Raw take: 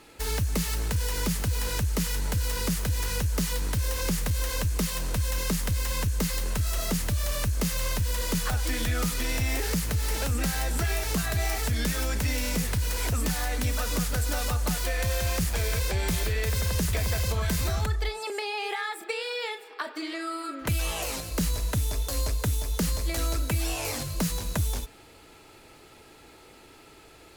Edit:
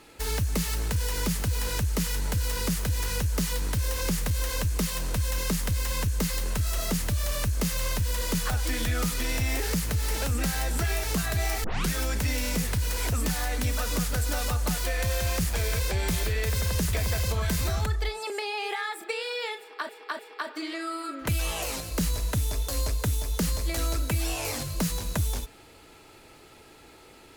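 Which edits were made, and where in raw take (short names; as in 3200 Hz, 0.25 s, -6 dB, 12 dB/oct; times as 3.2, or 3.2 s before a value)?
11.64 tape start 0.26 s
19.59–19.89 loop, 3 plays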